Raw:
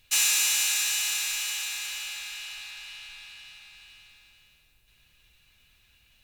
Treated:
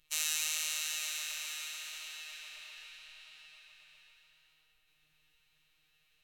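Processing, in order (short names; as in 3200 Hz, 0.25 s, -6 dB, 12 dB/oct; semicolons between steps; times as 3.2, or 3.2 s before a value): robotiser 200 Hz; tape echo 0.129 s, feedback 79%, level -4.5 dB, low-pass 5600 Hz; formant-preserving pitch shift -4.5 st; gain -8.5 dB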